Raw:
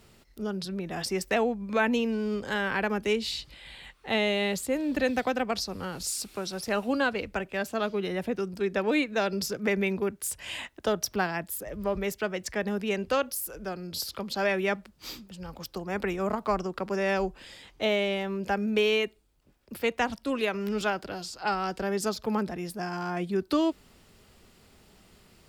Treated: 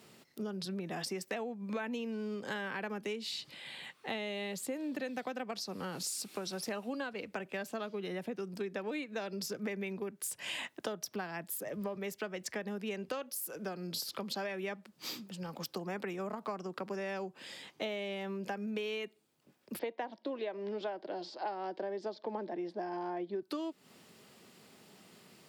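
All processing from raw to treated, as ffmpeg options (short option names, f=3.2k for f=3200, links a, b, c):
-filter_complex "[0:a]asettb=1/sr,asplit=3[a][b][c];[a]atrim=end=19.794[d];[b]atrim=start=19.79:end=23.42,asetpts=PTS-STARTPTS,afade=t=in:d=0.004:c=qsin,afade=t=out:st=3.626:d=0.004:c=qsin,acrusher=bits=8:mode=log:mix=0:aa=0.000001,highpass=280,equalizer=f=340:t=q:w=4:g=9,equalizer=f=610:t=q:w=4:g=8,equalizer=f=890:t=q:w=4:g=5,equalizer=f=1.3k:t=q:w=4:g=-9,equalizer=f=2.6k:t=q:w=4:g=-8,lowpass=f=4.1k:w=0.5412,lowpass=f=4.1k:w=1.3066[e];[c]atrim=start=23.416[f];[d][e]acrossfade=d=0.004:c1=hsin:c2=qsin[g];[g][f]acrossfade=d=0.004:c1=qsin:c2=hsin,acompressor=threshold=-35dB:ratio=10,highpass=f=140:w=0.5412,highpass=f=140:w=1.3066,bandreject=f=1.4k:w=26"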